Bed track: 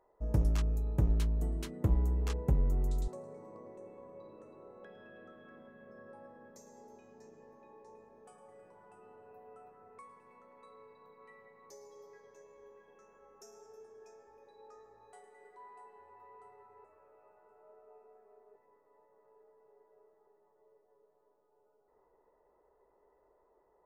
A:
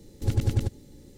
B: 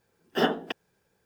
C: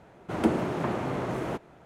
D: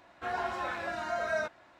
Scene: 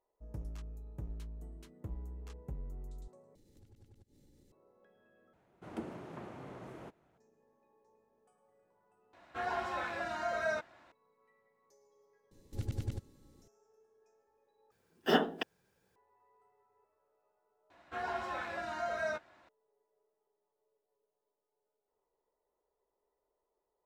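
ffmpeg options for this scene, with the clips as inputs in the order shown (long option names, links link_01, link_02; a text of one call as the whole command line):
ffmpeg -i bed.wav -i cue0.wav -i cue1.wav -i cue2.wav -i cue3.wav -filter_complex "[1:a]asplit=2[link_01][link_02];[4:a]asplit=2[link_03][link_04];[0:a]volume=-14.5dB[link_05];[link_01]acompressor=threshold=-46dB:ratio=6:attack=3.2:release=140:knee=1:detection=peak[link_06];[link_04]asplit=2[link_07][link_08];[link_08]adelay=13,volume=-13.5dB[link_09];[link_07][link_09]amix=inputs=2:normalize=0[link_10];[link_05]asplit=6[link_11][link_12][link_13][link_14][link_15][link_16];[link_11]atrim=end=3.354[link_17];[link_06]atrim=end=1.17,asetpts=PTS-STARTPTS,volume=-14dB[link_18];[link_12]atrim=start=4.516:end=5.334[link_19];[3:a]atrim=end=1.85,asetpts=PTS-STARTPTS,volume=-17.5dB[link_20];[link_13]atrim=start=7.176:end=9.134[link_21];[link_03]atrim=end=1.79,asetpts=PTS-STARTPTS,volume=-2.5dB[link_22];[link_14]atrim=start=10.916:end=14.714[link_23];[2:a]atrim=end=1.25,asetpts=PTS-STARTPTS,volume=-3.5dB[link_24];[link_15]atrim=start=15.956:end=17.704[link_25];[link_10]atrim=end=1.79,asetpts=PTS-STARTPTS,volume=-4.5dB[link_26];[link_16]atrim=start=19.486[link_27];[link_02]atrim=end=1.17,asetpts=PTS-STARTPTS,volume=-13dB,afade=type=in:duration=0.004:curve=hsin,afade=type=out:start_time=1.166:duration=0.004:curve=hsin,adelay=12310[link_28];[link_17][link_18]acrossfade=duration=0.004:curve1=hsin:curve2=hsin[link_29];[link_29][link_19]acrossfade=duration=0.004:curve1=hsin:curve2=hsin[link_30];[link_30][link_20]acrossfade=duration=0.004:curve1=hsin:curve2=hsin[link_31];[link_31][link_21]acrossfade=duration=0.004:curve1=hsin:curve2=hsin[link_32];[link_32][link_22]acrossfade=duration=0.004:curve1=hsin:curve2=hsin[link_33];[link_33][link_23]acrossfade=duration=0.004:curve1=hsin:curve2=hsin[link_34];[link_34][link_24]acrossfade=duration=0.004:curve1=hsin:curve2=hsin[link_35];[link_35][link_25]acrossfade=duration=0.004:curve1=hsin:curve2=hsin[link_36];[link_36][link_26]acrossfade=duration=0.004:curve1=hsin:curve2=hsin[link_37];[link_37][link_27]acrossfade=duration=0.004:curve1=hsin:curve2=hsin[link_38];[link_38][link_28]amix=inputs=2:normalize=0" out.wav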